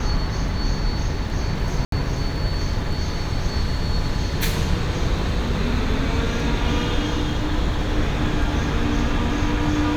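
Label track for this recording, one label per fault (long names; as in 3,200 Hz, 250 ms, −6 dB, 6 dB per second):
1.850000	1.920000	drop-out 73 ms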